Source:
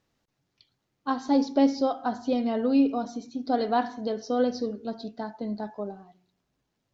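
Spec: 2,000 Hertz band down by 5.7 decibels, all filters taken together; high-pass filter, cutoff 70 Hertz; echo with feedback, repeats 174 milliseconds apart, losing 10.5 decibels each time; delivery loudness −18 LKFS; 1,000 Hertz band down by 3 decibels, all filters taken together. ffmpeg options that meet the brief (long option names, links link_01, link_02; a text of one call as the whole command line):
ffmpeg -i in.wav -af "highpass=70,equalizer=frequency=1000:width_type=o:gain=-3.5,equalizer=frequency=2000:width_type=o:gain=-6.5,aecho=1:1:174|348|522:0.299|0.0896|0.0269,volume=10dB" out.wav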